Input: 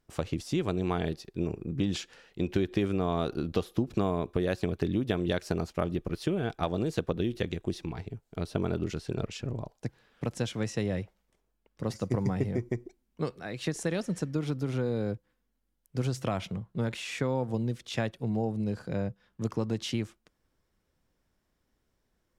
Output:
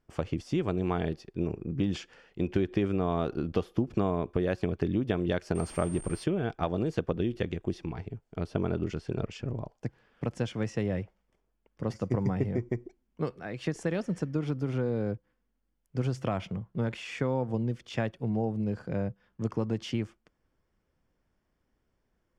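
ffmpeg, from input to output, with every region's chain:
ffmpeg -i in.wav -filter_complex "[0:a]asettb=1/sr,asplit=3[link_01][link_02][link_03];[link_01]atrim=end=5.554[link_04];[link_02]atrim=start=5.55:end=6.24,asetpts=PTS-STARTPTS,afade=type=in:duration=0.004:curve=qsin,afade=type=out:start_time=0.686:duration=0.004:curve=qsin,aeval=exprs='val(0)+0.5*0.00944*sgn(val(0))':channel_layout=same,aeval=exprs='val(0)+0.0158*sin(2*PI*8700*n/s)':channel_layout=same[link_05];[link_03]atrim=start=6.236[link_06];[link_04][link_05]acrossfade=duration=0.004:curve1=hsin:curve2=qsin[link_07];[link_07][link_06]acrossfade=duration=0.004:curve1=qsin:curve2=hsin,aemphasis=mode=reproduction:type=50fm,bandreject=frequency=3900:width=6.9" out.wav

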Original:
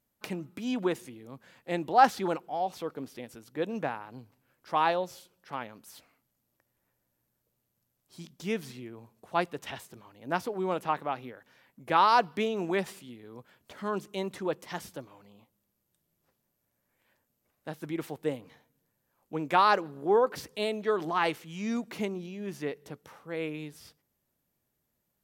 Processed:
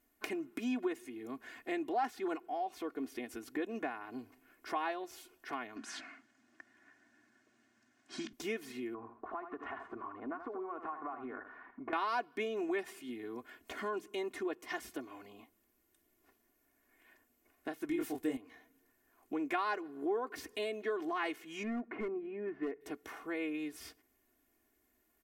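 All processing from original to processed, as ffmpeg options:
ffmpeg -i in.wav -filter_complex "[0:a]asettb=1/sr,asplit=3[link_01][link_02][link_03];[link_01]atrim=end=5.764[link_04];[link_02]atrim=start=5.76:end=8.33,asetpts=PTS-STARTPTS,afade=type=in:duration=0.004:curve=qsin,afade=type=out:start_time=2.566:duration=0.004:curve=qsin,acontrast=67,highpass=frequency=110:width=0.5412,highpass=frequency=110:width=1.3066,equalizer=frequency=220:width_type=q:width=4:gain=5,equalizer=frequency=450:width_type=q:width=4:gain=-10,equalizer=frequency=1600:width_type=q:width=4:gain=10,lowpass=frequency=6900:width=0.5412,lowpass=frequency=6900:width=1.3066[link_05];[link_03]atrim=start=8.326[link_06];[link_04][link_05]acrossfade=duration=0.004:curve1=hsin:curve2=qsin[link_07];[link_07][link_06]acrossfade=duration=0.004:curve1=qsin:curve2=hsin,asettb=1/sr,asplit=3[link_08][link_09][link_10];[link_08]atrim=end=8.944[link_11];[link_09]atrim=start=8.94:end=11.93,asetpts=PTS-STARTPTS,afade=type=in:duration=0.004:curve=qsin,afade=type=out:start_time=2.986:duration=0.004:curve=qsin,acompressor=threshold=-43dB:ratio=5:attack=3.2:release=140:knee=1:detection=peak,lowpass=frequency=1200:width_type=q:width=3.2,aecho=1:1:79:0.316,atrim=end_sample=131859[link_12];[link_10]atrim=start=11.926[link_13];[link_11][link_12]acrossfade=duration=0.004:curve1=hsin:curve2=qsin[link_14];[link_14][link_13]acrossfade=duration=0.004:curve1=qsin:curve2=hsin,asettb=1/sr,asplit=3[link_15][link_16][link_17];[link_15]atrim=end=17.894[link_18];[link_16]atrim=start=17.89:end=18.37,asetpts=PTS-STARTPTS,afade=type=in:duration=0.004:curve=qsin,afade=type=out:start_time=0.476:duration=0.004:curve=qsin,bass=frequency=250:gain=10,treble=frequency=4000:gain=8,asplit=2[link_19][link_20];[link_20]adelay=23,volume=-2dB[link_21];[link_19][link_21]amix=inputs=2:normalize=0,atrim=end_sample=21168[link_22];[link_17]atrim=start=18.366[link_23];[link_18][link_22]acrossfade=duration=0.004:curve1=hsin:curve2=qsin[link_24];[link_24][link_23]acrossfade=duration=0.004:curve1=qsin:curve2=hsin,asettb=1/sr,asplit=3[link_25][link_26][link_27];[link_25]atrim=end=21.634[link_28];[link_26]atrim=start=21.63:end=22.81,asetpts=PTS-STARTPTS,afade=type=in:duration=0.004:curve=qsin,afade=type=out:start_time=1.176:duration=0.004:curve=qsin,lowpass=frequency=1900:width=0.5412,lowpass=frequency=1900:width=1.3066,volume=28.5dB,asoftclip=hard,volume=-28.5dB[link_29];[link_27]atrim=start=22.806[link_30];[link_28][link_29]acrossfade=duration=0.004:curve1=hsin:curve2=qsin[link_31];[link_31][link_30]acrossfade=duration=0.004:curve1=qsin:curve2=hsin,aecho=1:1:2.8:0.87,acompressor=threshold=-44dB:ratio=2.5,equalizer=frequency=125:width_type=o:width=1:gain=-12,equalizer=frequency=250:width_type=o:width=1:gain=7,equalizer=frequency=2000:width_type=o:width=1:gain=6,equalizer=frequency=4000:width_type=o:width=1:gain=-4,volume=1.5dB" out.wav

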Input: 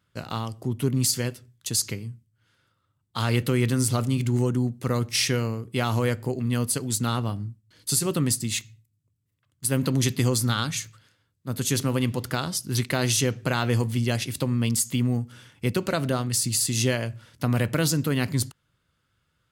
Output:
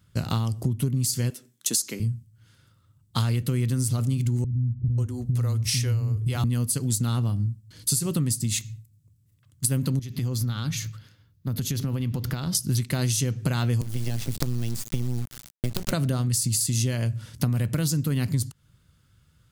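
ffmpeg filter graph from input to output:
ffmpeg -i in.wav -filter_complex "[0:a]asettb=1/sr,asplit=3[link_01][link_02][link_03];[link_01]atrim=end=1.304[link_04];[link_02]atrim=start=1.3:end=2,asetpts=PTS-STARTPTS,afade=type=in:duration=0.004:curve=qsin,afade=type=out:start_time=0.696:duration=0.004:curve=qsin,highpass=frequency=240:width=0.5412,highpass=frequency=240:width=1.3066,bandreject=frequency=4700:width=13[link_05];[link_03]atrim=start=1.996[link_06];[link_04][link_05]acrossfade=duration=0.004:curve1=hsin:curve2=qsin[link_07];[link_07][link_06]acrossfade=duration=0.004:curve1=qsin:curve2=hsin,asettb=1/sr,asplit=3[link_08][link_09][link_10];[link_08]atrim=end=4.444[link_11];[link_09]atrim=start=4.44:end=6.44,asetpts=PTS-STARTPTS,afade=type=in:duration=0.004:curve=qsin,afade=type=out:start_time=1.996:duration=0.004:curve=qsin,lowshelf=frequency=120:width_type=q:width=1.5:gain=8.5,acompressor=threshold=-36dB:ratio=1.5:attack=3.2:release=140:knee=1:detection=peak,acrossover=split=250[link_12][link_13];[link_13]adelay=540[link_14];[link_12][link_14]amix=inputs=2:normalize=0,atrim=end_sample=88200[link_15];[link_10]atrim=start=6.436[link_16];[link_11][link_15]acrossfade=duration=0.004:curve1=hsin:curve2=qsin[link_17];[link_17][link_16]acrossfade=duration=0.004:curve1=qsin:curve2=hsin,asettb=1/sr,asplit=3[link_18][link_19][link_20];[link_18]atrim=end=9.994[link_21];[link_19]atrim=start=9.99:end=12.55,asetpts=PTS-STARTPTS,afade=type=in:duration=0.004:curve=qsin,afade=type=out:start_time=2.556:duration=0.004:curve=qsin,equalizer=frequency=8600:width_type=o:width=0.8:gain=-12.5,acompressor=threshold=-34dB:ratio=6:attack=3.2:release=140:knee=1:detection=peak[link_22];[link_20]atrim=start=12.546[link_23];[link_21][link_22]acrossfade=duration=0.004:curve1=hsin:curve2=qsin[link_24];[link_24][link_23]acrossfade=duration=0.004:curve1=qsin:curve2=hsin,asettb=1/sr,asplit=3[link_25][link_26][link_27];[link_25]atrim=end=13.814[link_28];[link_26]atrim=start=13.81:end=15.92,asetpts=PTS-STARTPTS,afade=type=in:duration=0.004:curve=qsin,afade=type=out:start_time=2.106:duration=0.004:curve=qsin,acrossover=split=110|1200|4800[link_29][link_30][link_31][link_32];[link_29]acompressor=threshold=-36dB:ratio=3[link_33];[link_30]acompressor=threshold=-29dB:ratio=3[link_34];[link_31]acompressor=threshold=-36dB:ratio=3[link_35];[link_32]acompressor=threshold=-48dB:ratio=3[link_36];[link_33][link_34][link_35][link_36]amix=inputs=4:normalize=0,acrusher=bits=4:dc=4:mix=0:aa=0.000001[link_37];[link_27]atrim=start=15.916[link_38];[link_28][link_37]acrossfade=duration=0.004:curve1=hsin:curve2=qsin[link_39];[link_39][link_38]acrossfade=duration=0.004:curve1=qsin:curve2=hsin,bass=frequency=250:gain=12,treble=frequency=4000:gain=8,acompressor=threshold=-24dB:ratio=10,volume=2.5dB" out.wav

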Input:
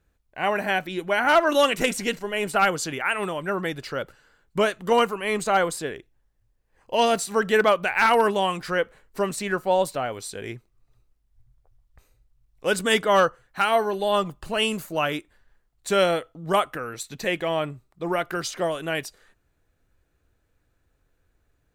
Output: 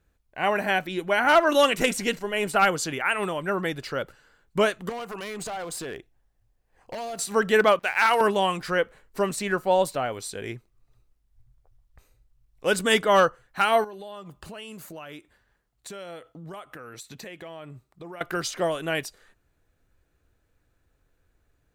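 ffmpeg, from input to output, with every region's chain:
ffmpeg -i in.wav -filter_complex "[0:a]asettb=1/sr,asplit=3[link_01][link_02][link_03];[link_01]atrim=end=4.894[link_04];[link_02]atrim=start=4.89:end=7.19,asetpts=PTS-STARTPTS,afade=type=in:duration=0.004:curve=qsin,afade=type=out:start_time=2.296:duration=0.004:curve=qsin,equalizer=frequency=730:width_type=o:width=0.27:gain=7,acompressor=threshold=-28dB:ratio=16:attack=3.2:release=140:knee=1:detection=peak,aeval=exprs='0.0398*(abs(mod(val(0)/0.0398+3,4)-2)-1)':channel_layout=same[link_05];[link_03]atrim=start=7.186[link_06];[link_04][link_05]acrossfade=duration=0.004:curve1=hsin:curve2=qsin[link_07];[link_07][link_06]acrossfade=duration=0.004:curve1=qsin:curve2=hsin,asettb=1/sr,asplit=3[link_08][link_09][link_10];[link_08]atrim=end=7.794[link_11];[link_09]atrim=start=7.79:end=8.21,asetpts=PTS-STARTPTS,afade=type=in:duration=0.004:curve=qsin,afade=type=out:start_time=0.416:duration=0.004:curve=qsin,highpass=frequency=620:poles=1,aeval=exprs='sgn(val(0))*max(abs(val(0))-0.00596,0)':channel_layout=same[link_12];[link_10]atrim=start=8.206[link_13];[link_11][link_12]acrossfade=duration=0.004:curve1=hsin:curve2=qsin[link_14];[link_14][link_13]acrossfade=duration=0.004:curve1=qsin:curve2=hsin,asettb=1/sr,asplit=3[link_15][link_16][link_17];[link_15]atrim=end=13.844[link_18];[link_16]atrim=start=13.84:end=18.21,asetpts=PTS-STARTPTS,afade=type=in:duration=0.004:curve=qsin,afade=type=out:start_time=4.366:duration=0.004:curve=qsin,highpass=51,acompressor=threshold=-38dB:ratio=6:attack=3.2:release=140:knee=1:detection=peak[link_19];[link_17]atrim=start=18.206[link_20];[link_18][link_19]acrossfade=duration=0.004:curve1=hsin:curve2=qsin[link_21];[link_21][link_20]acrossfade=duration=0.004:curve1=qsin:curve2=hsin" out.wav

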